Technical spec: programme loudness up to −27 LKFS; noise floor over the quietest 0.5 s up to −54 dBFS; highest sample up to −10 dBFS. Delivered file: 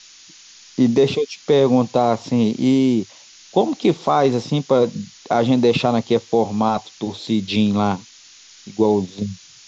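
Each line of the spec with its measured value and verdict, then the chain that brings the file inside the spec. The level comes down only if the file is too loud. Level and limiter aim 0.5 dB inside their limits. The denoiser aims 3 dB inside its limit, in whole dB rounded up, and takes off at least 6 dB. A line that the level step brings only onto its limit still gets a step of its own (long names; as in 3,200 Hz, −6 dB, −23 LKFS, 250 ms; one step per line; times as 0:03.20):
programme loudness −19.0 LKFS: out of spec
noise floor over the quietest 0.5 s −46 dBFS: out of spec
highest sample −5.5 dBFS: out of spec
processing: level −8.5 dB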